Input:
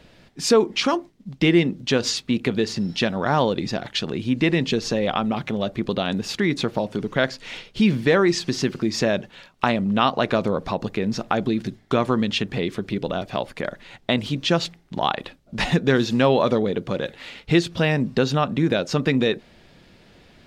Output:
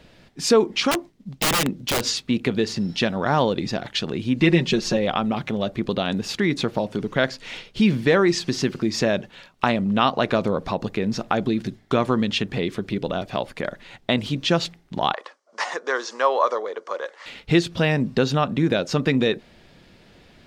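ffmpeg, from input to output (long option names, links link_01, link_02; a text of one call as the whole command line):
ffmpeg -i in.wav -filter_complex "[0:a]asettb=1/sr,asplit=3[link_01][link_02][link_03];[link_01]atrim=end=0.914[link_04];[link_02]atrim=start=0.91:end=2.06,asetpts=PTS-STARTPTS,afade=type=in:duration=0.004:curve=qsin,afade=type=out:start_time=1.146:duration=0.004:curve=qsin,aeval=exprs='(mod(5.96*val(0)+1,2)-1)/5.96':channel_layout=same[link_05];[link_03]atrim=start=2.056[link_06];[link_04][link_05]acrossfade=duration=0.004:curve1=hsin:curve2=qsin[link_07];[link_07][link_06]acrossfade=duration=0.004:curve1=qsin:curve2=hsin,asettb=1/sr,asplit=3[link_08][link_09][link_10];[link_08]atrim=end=4.394[link_11];[link_09]atrim=start=4.39:end=4.97,asetpts=PTS-STARTPTS,afade=type=in:duration=0.004:curve=qsin,afade=type=out:start_time=0.576:duration=0.004:curve=qsin,aecho=1:1:5.5:0.68,atrim=end_sample=25578[link_12];[link_10]atrim=start=4.966[link_13];[link_11][link_12]acrossfade=duration=0.004:curve1=hsin:curve2=qsin[link_14];[link_14][link_13]acrossfade=duration=0.004:curve1=qsin:curve2=hsin,asettb=1/sr,asplit=3[link_15][link_16][link_17];[link_15]atrim=end=15.144[link_18];[link_16]atrim=start=15.14:end=17.26,asetpts=PTS-STARTPTS,afade=type=in:duration=0.004:curve=qsin,afade=type=out:start_time=2.116:duration=0.004:curve=qsin,highpass=frequency=500:width=0.5412,highpass=frequency=500:width=1.3066,equalizer=frequency=730:width_type=q:width=4:gain=-3,equalizer=frequency=1100:width_type=q:width=4:gain=9,equalizer=frequency=2600:width_type=q:width=4:gain=-10,equalizer=frequency=3700:width_type=q:width=4:gain=-10,equalizer=frequency=5800:width_type=q:width=4:gain=4,lowpass=frequency=8400:width=0.5412,lowpass=frequency=8400:width=1.3066[link_19];[link_17]atrim=start=17.256[link_20];[link_18][link_19]acrossfade=duration=0.004:curve1=hsin:curve2=qsin[link_21];[link_21][link_20]acrossfade=duration=0.004:curve1=qsin:curve2=hsin" out.wav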